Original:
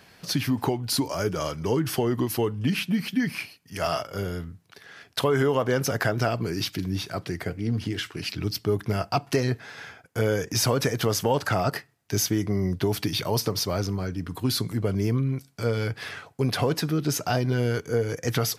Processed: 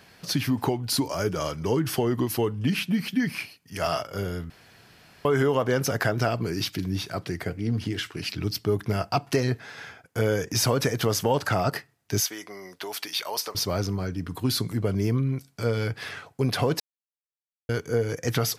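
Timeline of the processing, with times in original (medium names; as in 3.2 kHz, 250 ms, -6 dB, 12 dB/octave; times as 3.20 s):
4.50–5.25 s: room tone
12.20–13.55 s: high-pass 750 Hz
16.80–17.69 s: mute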